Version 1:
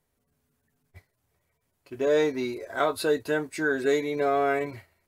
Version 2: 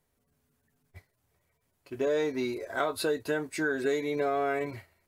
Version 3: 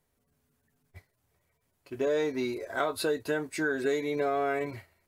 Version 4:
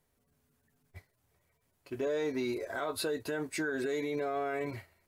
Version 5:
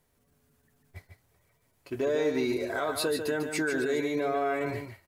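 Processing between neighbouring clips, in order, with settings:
downward compressor 3 to 1, threshold −26 dBFS, peak gain reduction 6 dB
no processing that can be heard
brickwall limiter −25.5 dBFS, peak gain reduction 10 dB
single-tap delay 147 ms −7 dB; level +4.5 dB

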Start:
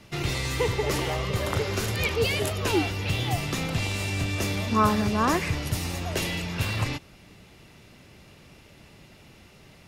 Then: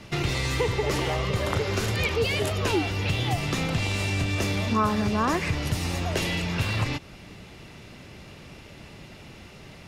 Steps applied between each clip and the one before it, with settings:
high-shelf EQ 11,000 Hz −11 dB
downward compressor 2 to 1, threshold −33 dBFS, peak gain reduction 9.5 dB
level +6.5 dB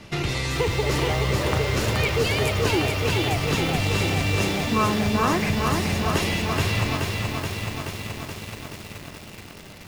mains-hum notches 60/120 Hz
feedback echo at a low word length 427 ms, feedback 80%, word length 7 bits, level −3.5 dB
level +1 dB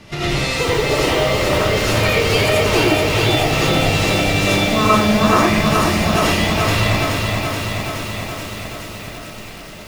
comb and all-pass reverb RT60 0.54 s, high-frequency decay 0.65×, pre-delay 45 ms, DRR −6.5 dB
level +1 dB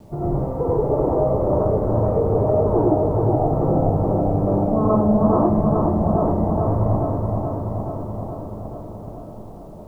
Butterworth low-pass 940 Hz 36 dB per octave
bit reduction 10 bits
level −1 dB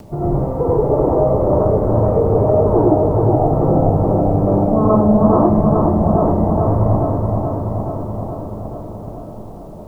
upward compression, threshold −41 dBFS
level +4.5 dB

